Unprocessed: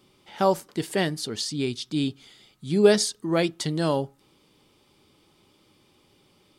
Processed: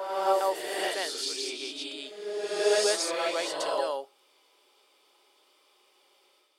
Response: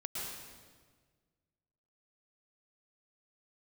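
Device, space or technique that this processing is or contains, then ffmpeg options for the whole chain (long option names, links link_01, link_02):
ghost voice: -filter_complex "[0:a]areverse[link_01];[1:a]atrim=start_sample=2205[link_02];[link_01][link_02]afir=irnorm=-1:irlink=0,areverse,highpass=frequency=480:width=0.5412,highpass=frequency=480:width=1.3066,volume=-1.5dB"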